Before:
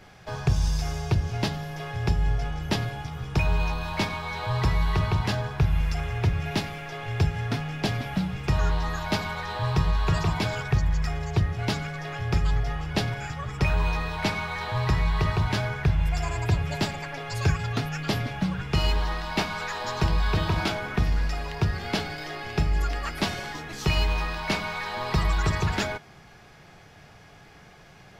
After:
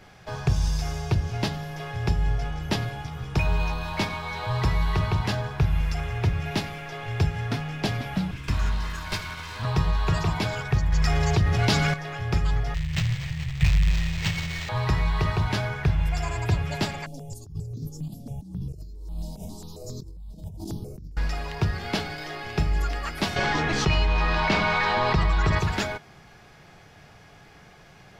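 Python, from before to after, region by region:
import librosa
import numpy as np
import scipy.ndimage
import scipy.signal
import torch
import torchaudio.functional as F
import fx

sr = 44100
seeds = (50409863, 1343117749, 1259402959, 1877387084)

y = fx.chain(x, sr, fx.lower_of_two(delay_ms=1.9),
    fx.peak_eq(hz=520.0, db=-11.0, octaves=1.4), at=(8.31, 9.65))
y = fx.chain(y, sr, fx.peak_eq(hz=5000.0, db=3.5, octaves=1.4),
    fx.env_flatten(amount_pct=70), at=(10.92, 11.94))
y = fx.chain(y, sr, fx.halfwave_hold(),
    fx.cheby1_bandstop(low_hz=170.0, high_hz=1800.0, order=5),
    fx.resample_linear(factor=4), at=(12.74, 14.69))
y = fx.chain(y, sr, fx.cheby1_bandstop(low_hz=330.0, high_hz=7900.0, order=2),
    fx.over_compress(threshold_db=-34.0, ratio=-1.0),
    fx.phaser_held(hz=7.4, low_hz=380.0, high_hz=2900.0), at=(17.06, 21.17))
y = fx.chain(y, sr, fx.lowpass(hz=6700.0, slope=12),
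    fx.high_shelf(hz=5200.0, db=-7.5),
    fx.env_flatten(amount_pct=70), at=(23.36, 25.59))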